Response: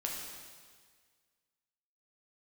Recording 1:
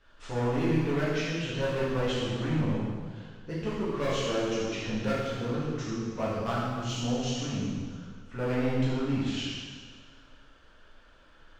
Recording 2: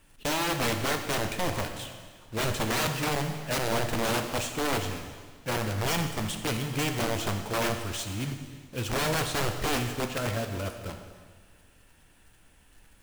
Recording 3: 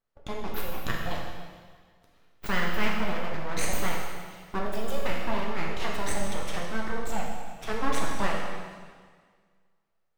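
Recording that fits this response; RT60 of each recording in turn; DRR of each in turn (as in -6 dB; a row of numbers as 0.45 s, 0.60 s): 3; 1.7 s, 1.7 s, 1.7 s; -9.5 dB, 5.0 dB, -2.0 dB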